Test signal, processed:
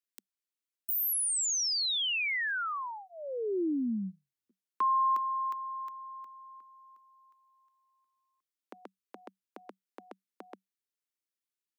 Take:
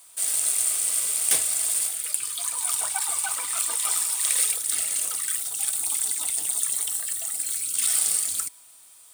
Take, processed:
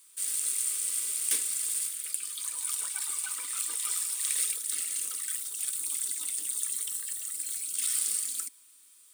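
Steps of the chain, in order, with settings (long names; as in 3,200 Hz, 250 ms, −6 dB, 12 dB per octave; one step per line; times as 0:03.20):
Chebyshev high-pass filter 190 Hz, order 8
phaser with its sweep stopped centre 300 Hz, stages 4
level −5.5 dB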